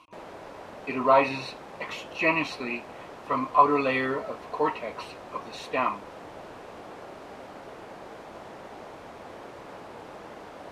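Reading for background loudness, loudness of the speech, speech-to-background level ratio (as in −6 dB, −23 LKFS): −43.5 LKFS, −26.5 LKFS, 17.0 dB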